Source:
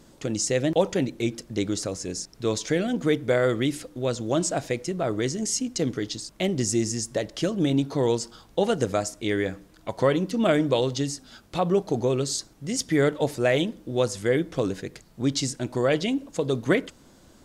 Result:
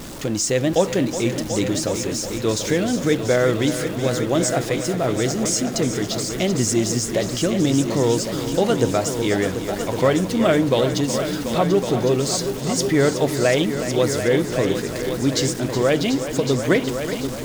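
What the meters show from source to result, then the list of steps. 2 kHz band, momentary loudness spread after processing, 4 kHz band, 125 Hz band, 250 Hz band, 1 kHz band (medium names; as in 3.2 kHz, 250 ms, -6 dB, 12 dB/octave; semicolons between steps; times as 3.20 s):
+5.5 dB, 5 LU, +6.0 dB, +6.0 dB, +5.5 dB, +5.5 dB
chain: jump at every zero crossing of -33 dBFS; multi-head delay 369 ms, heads all three, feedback 47%, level -11.5 dB; trim +3 dB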